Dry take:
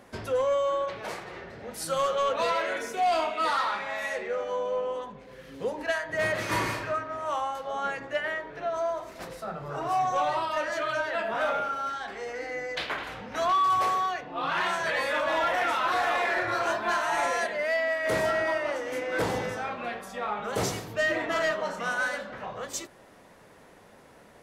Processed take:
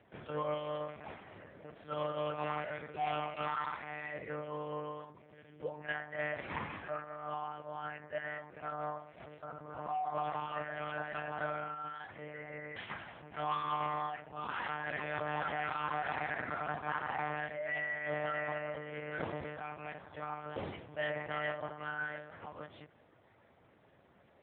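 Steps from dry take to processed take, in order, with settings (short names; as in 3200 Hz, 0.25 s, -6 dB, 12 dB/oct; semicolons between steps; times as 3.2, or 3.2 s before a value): monotone LPC vocoder at 8 kHz 150 Hz; gain -9 dB; AMR-NB 7.95 kbps 8000 Hz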